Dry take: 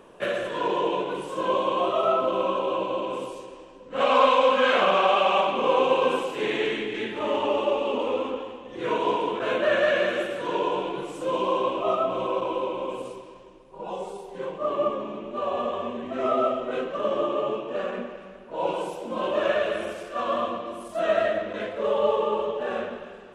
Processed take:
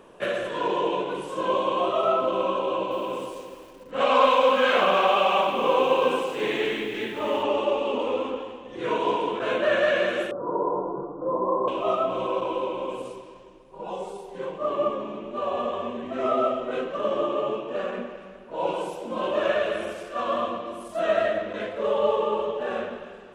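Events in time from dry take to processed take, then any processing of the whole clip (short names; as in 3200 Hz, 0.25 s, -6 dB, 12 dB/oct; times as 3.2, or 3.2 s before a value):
2.62–7.43 lo-fi delay 0.29 s, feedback 35%, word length 7-bit, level -14.5 dB
10.31–11.68 steep low-pass 1300 Hz 72 dB/oct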